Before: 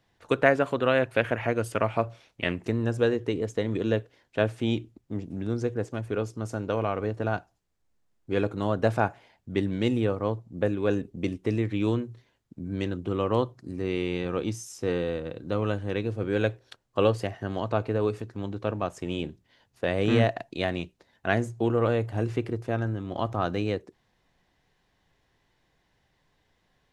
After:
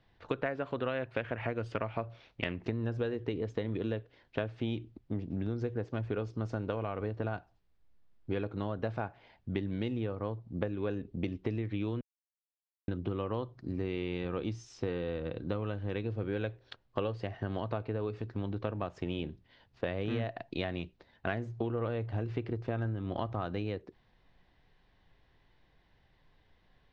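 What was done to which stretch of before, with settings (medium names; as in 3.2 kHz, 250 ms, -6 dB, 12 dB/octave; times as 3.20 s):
12.01–12.88 s: mute
whole clip: low-pass 4.6 kHz 24 dB/octave; bass shelf 66 Hz +10 dB; compression 10:1, threshold -30 dBFS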